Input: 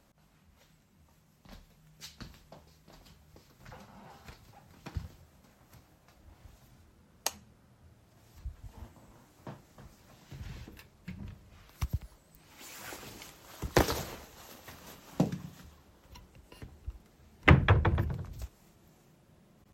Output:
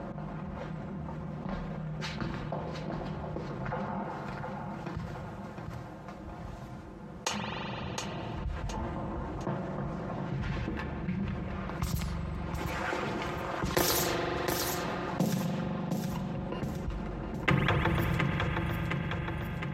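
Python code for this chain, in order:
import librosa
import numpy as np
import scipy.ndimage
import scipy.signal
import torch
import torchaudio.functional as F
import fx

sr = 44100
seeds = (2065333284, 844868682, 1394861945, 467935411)

y = fx.pre_emphasis(x, sr, coefficient=0.8, at=(4.03, 7.27))
y = fx.env_lowpass(y, sr, base_hz=970.0, full_db=-27.5)
y = fx.highpass(y, sr, hz=100.0, slope=6)
y = fx.high_shelf(y, sr, hz=5200.0, db=10.5)
y = y + 0.48 * np.pad(y, (int(5.7 * sr / 1000.0), 0))[:len(y)]
y = fx.echo_feedback(y, sr, ms=714, feedback_pct=27, wet_db=-14.0)
y = fx.rev_spring(y, sr, rt60_s=2.9, pass_ms=(42,), chirp_ms=65, drr_db=11.0)
y = fx.env_flatten(y, sr, amount_pct=70)
y = y * 10.0 ** (-8.0 / 20.0)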